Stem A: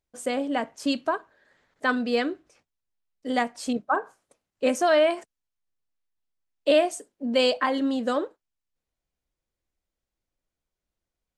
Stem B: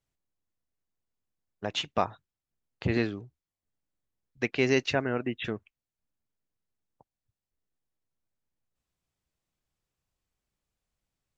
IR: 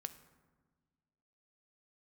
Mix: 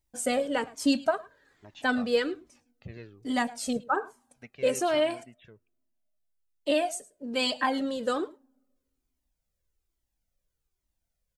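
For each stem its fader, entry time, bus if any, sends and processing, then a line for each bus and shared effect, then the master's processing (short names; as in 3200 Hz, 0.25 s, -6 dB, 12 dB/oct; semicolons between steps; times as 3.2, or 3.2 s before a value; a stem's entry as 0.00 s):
+0.5 dB, 0.00 s, send -22.5 dB, echo send -20.5 dB, high shelf 6400 Hz +10 dB; notch 1100 Hz, Q 24
-15.0 dB, 0.00 s, send -18.5 dB, no echo send, dry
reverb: on, RT60 1.5 s, pre-delay 3 ms
echo: echo 0.107 s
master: low shelf 320 Hz +5 dB; vocal rider 2 s; cascading flanger falling 1.2 Hz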